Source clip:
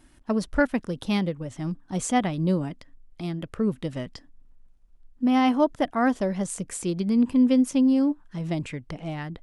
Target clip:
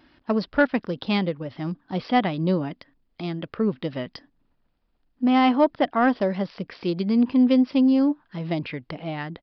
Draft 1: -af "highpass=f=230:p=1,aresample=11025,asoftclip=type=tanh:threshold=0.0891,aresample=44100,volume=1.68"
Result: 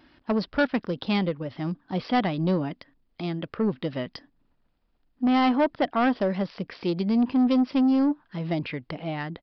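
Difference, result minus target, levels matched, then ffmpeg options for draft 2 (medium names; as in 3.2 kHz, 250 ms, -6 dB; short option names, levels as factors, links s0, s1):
saturation: distortion +13 dB
-af "highpass=f=230:p=1,aresample=11025,asoftclip=type=tanh:threshold=0.266,aresample=44100,volume=1.68"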